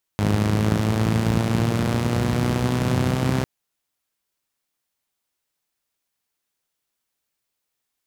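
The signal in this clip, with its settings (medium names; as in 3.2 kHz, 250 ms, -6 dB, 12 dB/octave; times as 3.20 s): four-cylinder engine model, changing speed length 3.25 s, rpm 3100, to 3900, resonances 100/160 Hz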